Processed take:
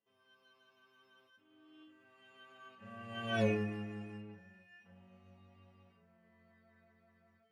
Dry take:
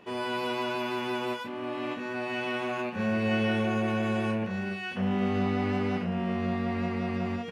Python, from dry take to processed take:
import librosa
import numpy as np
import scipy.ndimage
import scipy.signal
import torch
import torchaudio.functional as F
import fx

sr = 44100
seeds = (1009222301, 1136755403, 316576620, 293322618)

y = fx.doppler_pass(x, sr, speed_mps=17, closest_m=1.2, pass_at_s=3.41)
y = fx.stiff_resonator(y, sr, f0_hz=100.0, decay_s=0.42, stiffness=0.008)
y = F.gain(torch.from_numpy(y), 9.0).numpy()